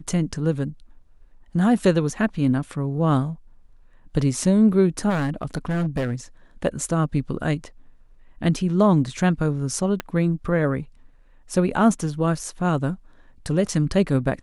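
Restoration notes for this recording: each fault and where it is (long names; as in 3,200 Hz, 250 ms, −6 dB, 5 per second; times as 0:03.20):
0:05.09–0:06.14: clipping −19.5 dBFS
0:10.00: click −12 dBFS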